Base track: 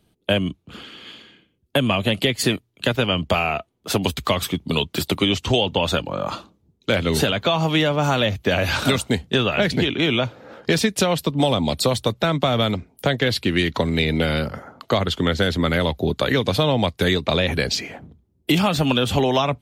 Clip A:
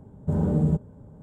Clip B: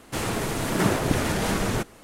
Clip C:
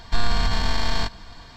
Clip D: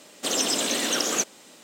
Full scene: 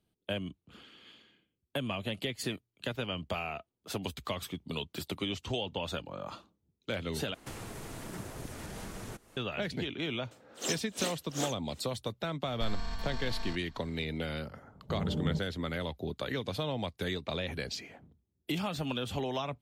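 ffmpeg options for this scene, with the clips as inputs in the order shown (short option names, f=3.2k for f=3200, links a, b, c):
-filter_complex "[0:a]volume=-15.5dB[a];[2:a]acrossover=split=120|5100[b][c][d];[b]acompressor=threshold=-39dB:ratio=4[e];[c]acompressor=threshold=-38dB:ratio=4[f];[d]acompressor=threshold=-46dB:ratio=4[g];[e][f][g]amix=inputs=3:normalize=0[h];[4:a]aeval=exprs='val(0)*pow(10,-34*(0.5-0.5*cos(2*PI*2.7*n/s))/20)':c=same[i];[3:a]aecho=1:1:4.5:0.39[j];[a]asplit=2[k][l];[k]atrim=end=7.344[m];[h]atrim=end=2.03,asetpts=PTS-STARTPTS,volume=-7dB[n];[l]atrim=start=9.366[o];[i]atrim=end=1.63,asetpts=PTS-STARTPTS,volume=-7.5dB,afade=t=in:d=0.004:c=hsin,afade=t=out:st=1.626:d=0.004:c=hsin,adelay=10310[p];[j]atrim=end=1.56,asetpts=PTS-STARTPTS,volume=-17.5dB,afade=t=in:d=0.004:c=hsin,afade=t=out:st=1.556:d=0.004:c=hsin,adelay=12480[q];[1:a]atrim=end=1.22,asetpts=PTS-STARTPTS,volume=-11dB,afade=t=in:d=0.004:c=hsin,afade=t=out:st=1.216:d=0.004:c=hsin,adelay=14620[r];[m][n]acrossfade=d=0.004:c1=hsin:c2=hsin[s];[s][o]acrossfade=d=0.004:c1=hsin:c2=hsin[t];[t][p][q][r]amix=inputs=4:normalize=0"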